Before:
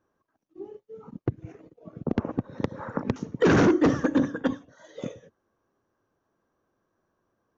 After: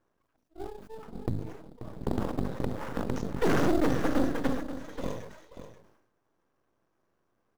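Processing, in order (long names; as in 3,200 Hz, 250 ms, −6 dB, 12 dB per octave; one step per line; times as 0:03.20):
mains-hum notches 50/100/150/200/250 Hz
brickwall limiter −17.5 dBFS, peak gain reduction 7 dB
half-wave rectification
in parallel at −7.5 dB: sample-rate reduction 4,200 Hz, jitter 20%
on the sum: single-tap delay 534 ms −11.5 dB
level that may fall only so fast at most 65 dB per second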